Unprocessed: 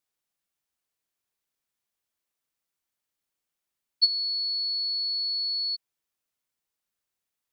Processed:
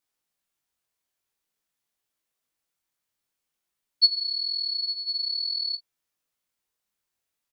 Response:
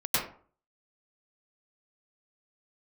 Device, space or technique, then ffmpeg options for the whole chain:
double-tracked vocal: -filter_complex "[0:a]asplit=2[s0][s1];[s1]adelay=24,volume=0.251[s2];[s0][s2]amix=inputs=2:normalize=0,flanger=delay=17:depth=6.1:speed=0.5,volume=1.78"

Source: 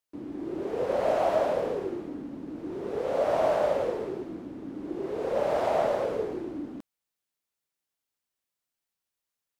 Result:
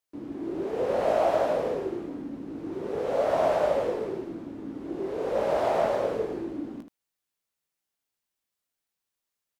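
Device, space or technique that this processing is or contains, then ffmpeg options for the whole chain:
slapback doubling: -filter_complex "[0:a]asplit=3[s0][s1][s2];[s1]adelay=18,volume=0.398[s3];[s2]adelay=78,volume=0.355[s4];[s0][s3][s4]amix=inputs=3:normalize=0"

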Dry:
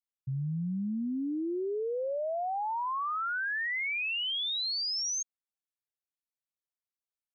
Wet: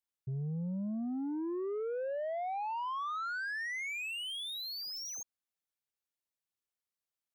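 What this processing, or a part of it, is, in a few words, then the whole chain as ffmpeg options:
saturation between pre-emphasis and de-emphasis: -af "highshelf=f=2700:g=9.5,asoftclip=type=tanh:threshold=0.0224,highshelf=f=2700:g=-9.5"

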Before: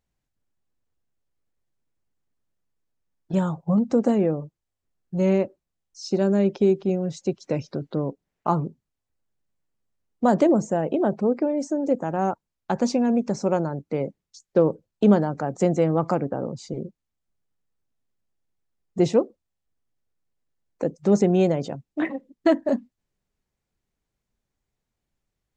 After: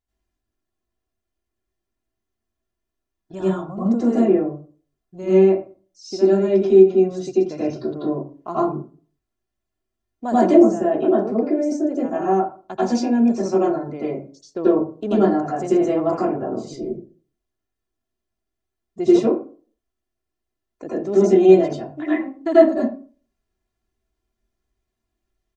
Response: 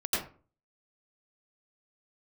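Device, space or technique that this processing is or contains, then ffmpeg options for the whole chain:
microphone above a desk: -filter_complex "[0:a]aecho=1:1:2.9:0.56[s0];[1:a]atrim=start_sample=2205[s1];[s0][s1]afir=irnorm=-1:irlink=0,volume=0.447"

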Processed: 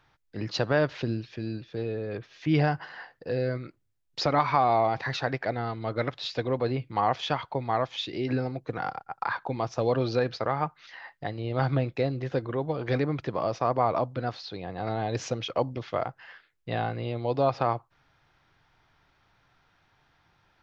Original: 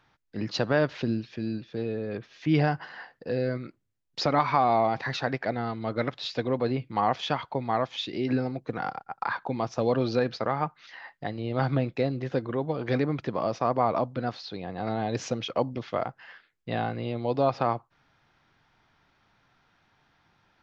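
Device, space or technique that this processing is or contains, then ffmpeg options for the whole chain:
low shelf boost with a cut just above: -af "lowshelf=f=100:g=5,equalizer=f=220:t=o:w=0.6:g=-6"

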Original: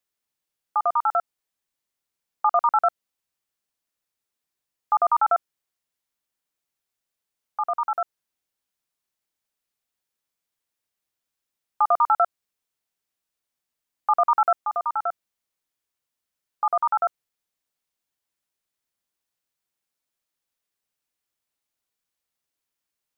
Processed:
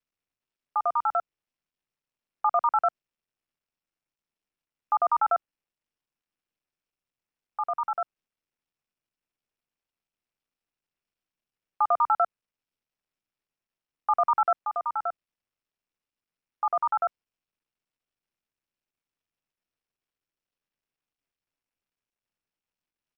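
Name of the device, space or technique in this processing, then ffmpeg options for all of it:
Bluetooth headset: -af "highpass=130,aresample=8000,aresample=44100,volume=0.668" -ar 44100 -c:a sbc -b:a 64k

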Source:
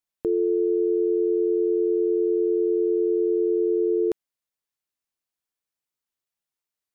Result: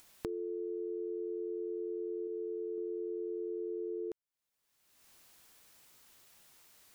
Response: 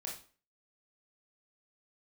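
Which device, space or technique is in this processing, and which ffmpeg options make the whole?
upward and downward compression: -filter_complex "[0:a]asettb=1/sr,asplit=3[s0][s1][s2];[s0]atrim=end=2.274[s3];[s1]atrim=start=2.27:end=2.78,asetpts=PTS-STARTPTS,afade=t=in:d=0.004:c=qsin,afade=t=out:st=0.506:d=0.004:c=qsin,equalizer=f=300:t=o:w=0.61:g=-5.5[s4];[s2]atrim=start=2.776[s5];[s3][s4]acrossfade=d=0.004:c1=hsin:c2=qsin[s6];[s6][s5]acrossfade=d=0.004:c1=qsin:c2=hsin,acompressor=mode=upward:threshold=0.00794:ratio=2.5,acompressor=threshold=0.0112:ratio=6,volume=1.12"

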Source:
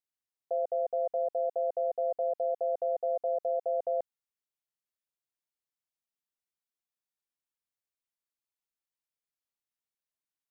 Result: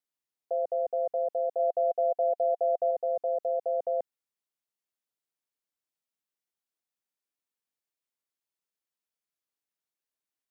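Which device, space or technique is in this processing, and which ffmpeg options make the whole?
filter by subtraction: -filter_complex "[0:a]asplit=2[s0][s1];[s1]lowpass=270,volume=-1[s2];[s0][s2]amix=inputs=2:normalize=0,asettb=1/sr,asplit=3[s3][s4][s5];[s3]atrim=end=1.594[s6];[s4]atrim=start=1.59:end=2.91,asetpts=PTS-STARTPTS,afade=t=in:d=0.004:c=qsin,afade=t=out:st=1.316:d=0.004:c=qsin,equalizer=f=700:t=o:w=0.25:g=5[s7];[s5]atrim=start=2.906[s8];[s6][s7]acrossfade=d=0.004:c1=hsin:c2=qsin[s9];[s9][s8]acrossfade=d=0.004:c1=qsin:c2=hsin"

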